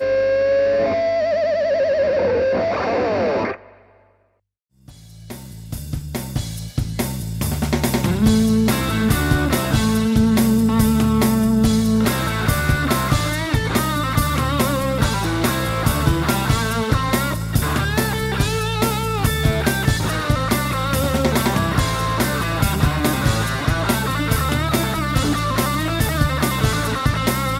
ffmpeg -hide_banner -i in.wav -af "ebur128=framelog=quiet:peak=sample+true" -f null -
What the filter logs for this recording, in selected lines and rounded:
Integrated loudness:
  I:         -19.0 LUFS
  Threshold: -29.3 LUFS
Loudness range:
  LRA:         7.7 LU
  Threshold: -39.4 LUFS
  LRA low:   -24.8 LUFS
  LRA high:  -17.1 LUFS
Sample peak:
  Peak:       -2.6 dBFS
True peak:
  Peak:       -2.6 dBFS